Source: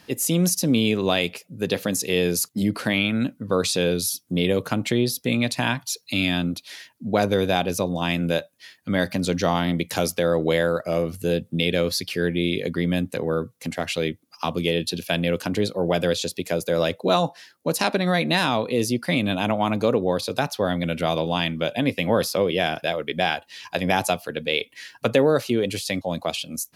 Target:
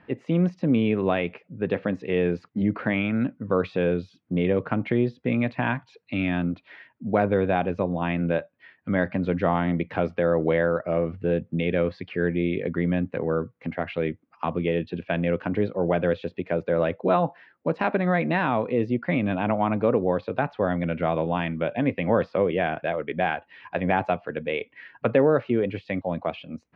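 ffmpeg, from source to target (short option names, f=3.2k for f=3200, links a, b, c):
-af "lowpass=f=2.2k:w=0.5412,lowpass=f=2.2k:w=1.3066,volume=-1dB"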